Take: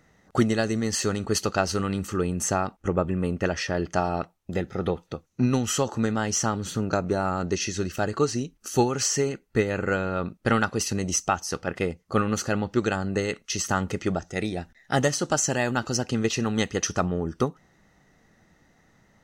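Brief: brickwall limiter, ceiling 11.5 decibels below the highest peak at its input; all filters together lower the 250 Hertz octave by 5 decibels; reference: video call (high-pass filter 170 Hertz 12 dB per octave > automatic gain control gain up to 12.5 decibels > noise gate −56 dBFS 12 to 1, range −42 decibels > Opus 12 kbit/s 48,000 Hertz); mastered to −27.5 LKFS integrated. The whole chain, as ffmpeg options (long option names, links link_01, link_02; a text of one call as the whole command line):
ffmpeg -i in.wav -af "equalizer=frequency=250:width_type=o:gain=-5,alimiter=limit=-21.5dB:level=0:latency=1,highpass=170,dynaudnorm=maxgain=12.5dB,agate=range=-42dB:threshold=-56dB:ratio=12,volume=0.5dB" -ar 48000 -c:a libopus -b:a 12k out.opus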